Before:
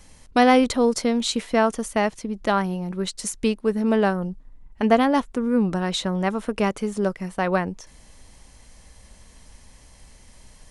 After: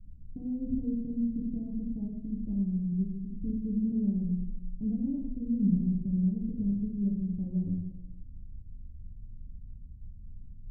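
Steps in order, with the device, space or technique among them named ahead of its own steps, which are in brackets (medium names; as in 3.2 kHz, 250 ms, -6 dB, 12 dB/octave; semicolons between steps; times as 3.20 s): club heard from the street (peak limiter -14.5 dBFS, peak gain reduction 10.5 dB; low-pass 180 Hz 24 dB/octave; reverberation RT60 1.1 s, pre-delay 7 ms, DRR -3.5 dB); peaking EQ 640 Hz +3.5 dB 1.4 oct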